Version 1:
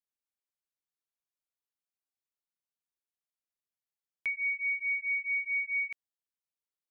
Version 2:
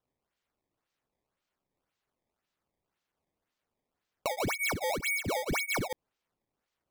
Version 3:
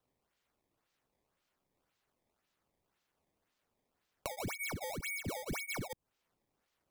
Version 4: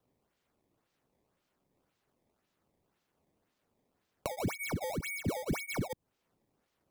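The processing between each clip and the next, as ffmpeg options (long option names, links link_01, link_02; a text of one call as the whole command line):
ffmpeg -i in.wav -af "acompressor=threshold=-38dB:ratio=6,acrusher=samples=18:mix=1:aa=0.000001:lfo=1:lforange=28.8:lforate=1.9,volume=8dB" out.wav
ffmpeg -i in.wav -filter_complex "[0:a]acrossover=split=170|6100[link_01][link_02][link_03];[link_01]acompressor=threshold=-44dB:ratio=4[link_04];[link_02]acompressor=threshold=-45dB:ratio=4[link_05];[link_03]acompressor=threshold=-49dB:ratio=4[link_06];[link_04][link_05][link_06]amix=inputs=3:normalize=0,volume=3dB" out.wav
ffmpeg -i in.wav -af "equalizer=frequency=200:width=0.3:gain=8" out.wav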